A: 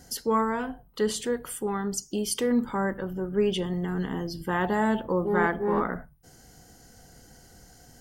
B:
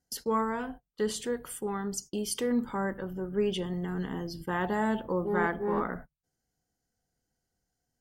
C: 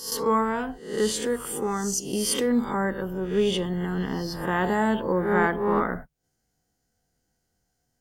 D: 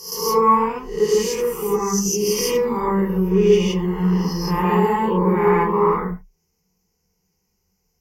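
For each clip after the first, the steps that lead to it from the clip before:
gate -39 dBFS, range -26 dB; trim -4 dB
reverse spectral sustain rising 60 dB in 0.55 s; trim +5 dB
rippled EQ curve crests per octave 0.8, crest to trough 17 dB; gated-style reverb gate 190 ms rising, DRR -5.5 dB; trim -4.5 dB

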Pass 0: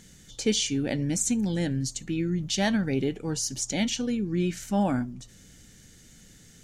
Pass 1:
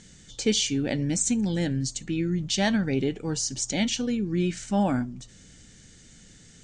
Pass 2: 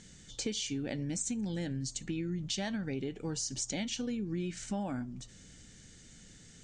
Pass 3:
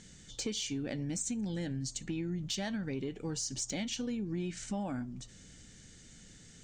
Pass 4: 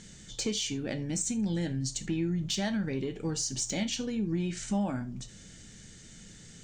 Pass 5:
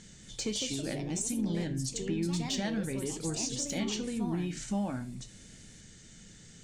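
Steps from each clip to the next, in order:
elliptic low-pass 8.6 kHz, stop band 50 dB; trim +2 dB
compression, threshold -29 dBFS, peak gain reduction 11 dB; trim -3.5 dB
saturation -24 dBFS, distortion -26 dB
gated-style reverb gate 110 ms falling, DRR 9.5 dB; trim +4 dB
ever faster or slower copies 230 ms, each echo +3 st, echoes 2, each echo -6 dB; trim -2.5 dB

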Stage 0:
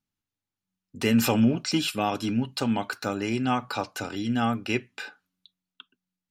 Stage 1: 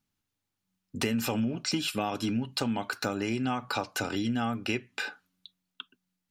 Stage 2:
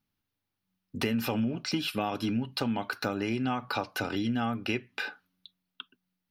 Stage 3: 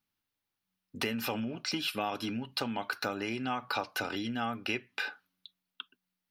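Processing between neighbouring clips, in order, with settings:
compression 6:1, threshold -32 dBFS, peak gain reduction 15 dB; trim +5 dB
peaking EQ 7.5 kHz -14 dB 0.52 oct
bass shelf 350 Hz -9.5 dB

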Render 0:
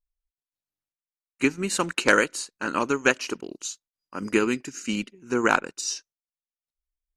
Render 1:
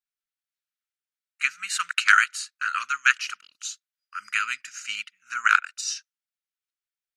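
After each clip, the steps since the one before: elliptic high-pass 1.3 kHz, stop band 40 dB; treble shelf 3.8 kHz -8 dB; trim +6 dB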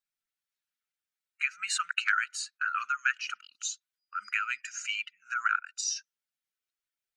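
spectral contrast enhancement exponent 1.6; compression 2.5:1, threshold -28 dBFS, peak gain reduction 11.5 dB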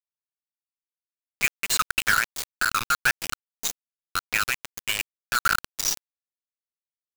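valve stage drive 20 dB, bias 0.35; bit crusher 5-bit; trim +7.5 dB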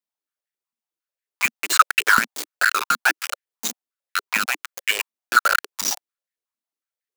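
step-sequenced high-pass 11 Hz 230–1800 Hz; trim +1.5 dB

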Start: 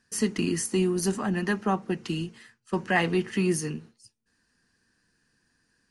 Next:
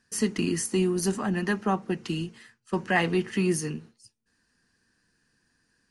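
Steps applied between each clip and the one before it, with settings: no audible change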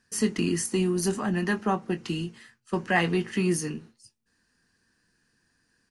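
doubling 23 ms -11.5 dB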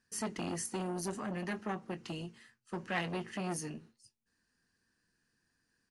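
transformer saturation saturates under 1.2 kHz; trim -8.5 dB

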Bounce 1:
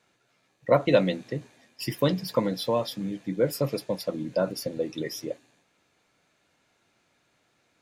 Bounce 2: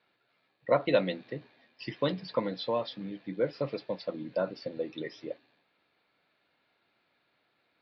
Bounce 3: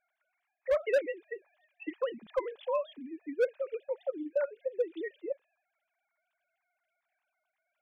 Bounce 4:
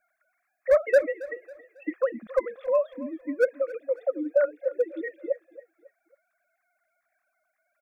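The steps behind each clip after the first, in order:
elliptic low-pass 4.4 kHz, stop band 50 dB; bass shelf 160 Hz -10 dB; trim -3 dB
formants replaced by sine waves; hard clipper -21.5 dBFS, distortion -11 dB
static phaser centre 610 Hz, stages 8; feedback delay 274 ms, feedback 38%, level -18 dB; trim +9 dB

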